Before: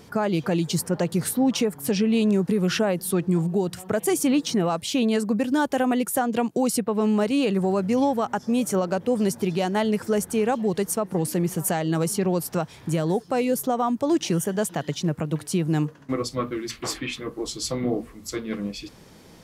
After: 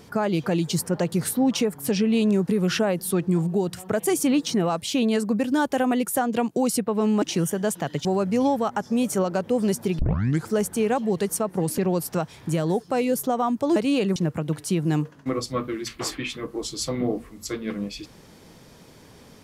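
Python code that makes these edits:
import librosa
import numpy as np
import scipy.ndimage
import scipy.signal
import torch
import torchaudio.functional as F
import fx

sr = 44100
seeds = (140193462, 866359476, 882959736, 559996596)

y = fx.edit(x, sr, fx.swap(start_s=7.22, length_s=0.4, other_s=14.16, other_length_s=0.83),
    fx.tape_start(start_s=9.56, length_s=0.49),
    fx.cut(start_s=11.35, length_s=0.83), tone=tone)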